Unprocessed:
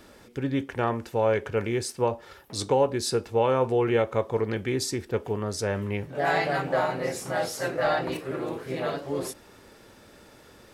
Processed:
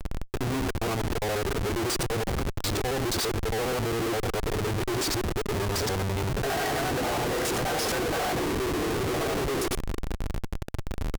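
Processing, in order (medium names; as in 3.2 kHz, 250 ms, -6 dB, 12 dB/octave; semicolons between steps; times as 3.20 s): time reversed locally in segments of 65 ms; comb 2.5 ms, depth 59%; in parallel at +2 dB: peak limiter -20.5 dBFS, peak gain reduction 11.5 dB; on the sum: waveshaping leveller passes 3; reverse; compression 20:1, threshold -19 dBFS, peak gain reduction 10.5 dB; reverse; Schmitt trigger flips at -24.5 dBFS; speed mistake 25 fps video run at 24 fps; trim -4.5 dB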